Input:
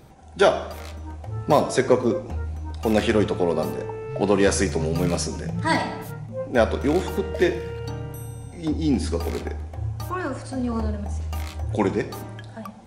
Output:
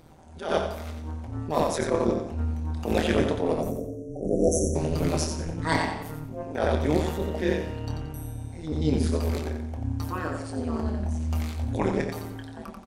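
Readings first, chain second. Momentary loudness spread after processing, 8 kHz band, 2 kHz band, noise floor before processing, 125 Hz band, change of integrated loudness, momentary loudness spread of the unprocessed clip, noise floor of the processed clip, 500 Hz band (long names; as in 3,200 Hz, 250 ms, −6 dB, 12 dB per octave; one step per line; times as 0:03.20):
12 LU, −2.5 dB, −5.5 dB, −39 dBFS, −1.5 dB, −4.0 dB, 14 LU, −41 dBFS, −4.5 dB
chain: time-frequency box erased 0:03.61–0:04.76, 610–5,500 Hz
amplitude modulation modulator 160 Hz, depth 90%
double-tracking delay 26 ms −8.5 dB
repeating echo 89 ms, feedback 32%, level −6.5 dB
level that may rise only so fast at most 110 dB per second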